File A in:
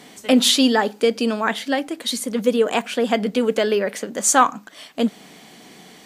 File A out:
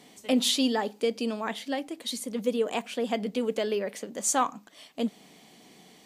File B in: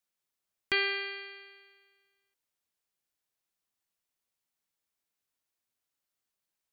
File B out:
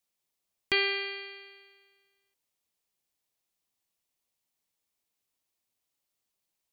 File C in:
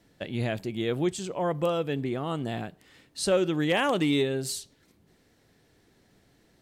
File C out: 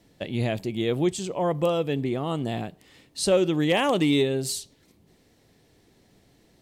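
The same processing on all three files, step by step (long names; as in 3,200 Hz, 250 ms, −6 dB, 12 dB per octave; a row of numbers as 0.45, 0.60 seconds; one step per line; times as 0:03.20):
parametric band 1,500 Hz −6.5 dB 0.57 octaves
normalise the peak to −12 dBFS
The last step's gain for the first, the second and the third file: −9.0, +3.5, +3.5 decibels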